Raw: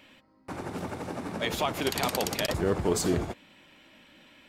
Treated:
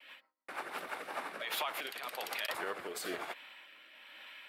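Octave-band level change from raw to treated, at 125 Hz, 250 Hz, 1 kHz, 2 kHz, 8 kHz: -31.5 dB, -19.5 dB, -6.5 dB, -3.0 dB, -12.0 dB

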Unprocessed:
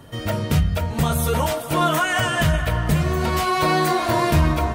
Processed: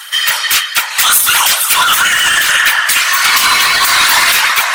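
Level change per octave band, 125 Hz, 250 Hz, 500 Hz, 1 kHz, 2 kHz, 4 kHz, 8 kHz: under -20 dB, -14.0 dB, -8.0 dB, +8.0 dB, +16.5 dB, +19.5 dB, +21.0 dB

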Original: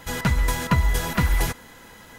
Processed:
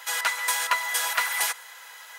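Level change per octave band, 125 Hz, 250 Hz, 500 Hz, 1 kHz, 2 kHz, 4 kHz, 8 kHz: under -40 dB, under -30 dB, -9.5 dB, +1.0 dB, +3.5 dB, +4.5 dB, +6.0 dB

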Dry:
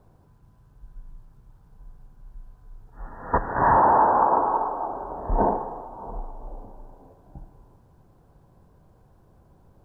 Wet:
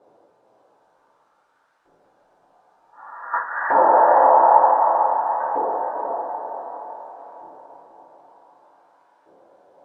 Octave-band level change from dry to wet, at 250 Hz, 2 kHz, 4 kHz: -5.0 dB, +5.5 dB, no reading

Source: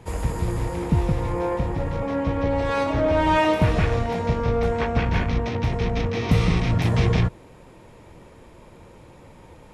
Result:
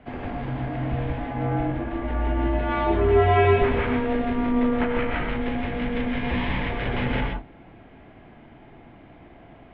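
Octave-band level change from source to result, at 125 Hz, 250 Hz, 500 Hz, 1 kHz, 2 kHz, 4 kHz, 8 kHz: -5.0 dB, 0.0 dB, 0.0 dB, -0.5 dB, +0.5 dB, -3.0 dB, under -35 dB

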